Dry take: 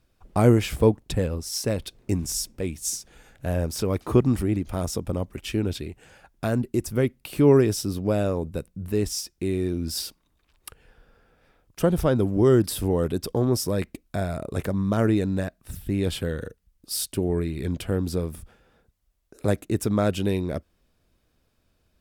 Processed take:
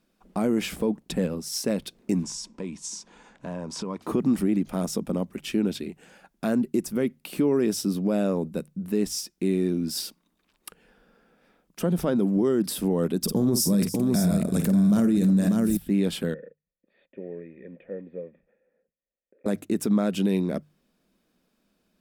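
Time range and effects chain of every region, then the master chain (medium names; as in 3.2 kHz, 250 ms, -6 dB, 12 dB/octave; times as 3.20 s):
2.23–4.02 s: low-pass 7.8 kHz 24 dB/octave + compression, threshold -30 dBFS + peaking EQ 990 Hz +14.5 dB 0.32 oct
13.21–15.77 s: tone controls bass +14 dB, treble +13 dB + multi-tap echo 49/309/593 ms -9.5/-19.5/-8.5 dB
16.34–19.46 s: block-companded coder 5-bit + cascade formant filter e
whole clip: resonant low shelf 140 Hz -10.5 dB, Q 3; hum notches 50/100/150 Hz; peak limiter -13.5 dBFS; trim -1 dB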